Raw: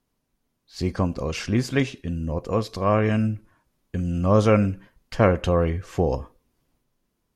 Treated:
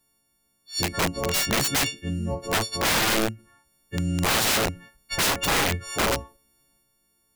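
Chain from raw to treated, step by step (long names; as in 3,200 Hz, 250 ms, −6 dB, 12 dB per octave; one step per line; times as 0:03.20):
every partial snapped to a pitch grid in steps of 4 semitones
wrap-around overflow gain 17 dB
every ending faded ahead of time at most 210 dB per second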